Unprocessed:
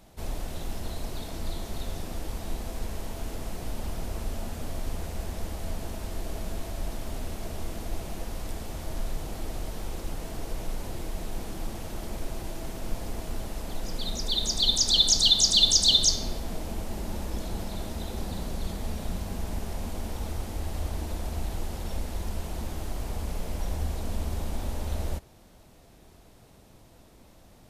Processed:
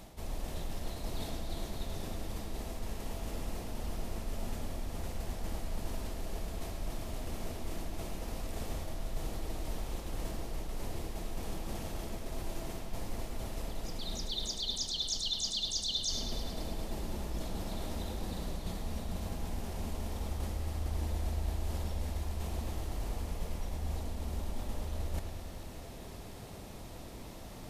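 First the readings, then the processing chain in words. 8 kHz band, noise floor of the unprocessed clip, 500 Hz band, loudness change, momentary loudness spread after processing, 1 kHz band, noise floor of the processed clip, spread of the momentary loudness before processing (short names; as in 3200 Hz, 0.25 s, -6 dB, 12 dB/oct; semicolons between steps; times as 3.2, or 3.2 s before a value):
-12.5 dB, -54 dBFS, -4.5 dB, -10.0 dB, 9 LU, -4.5 dB, -46 dBFS, 17 LU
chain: notch 1500 Hz, Q 21; reverse; compressor 6:1, threshold -42 dBFS, peak gain reduction 24 dB; reverse; analogue delay 0.105 s, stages 4096, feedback 74%, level -9 dB; gain +7 dB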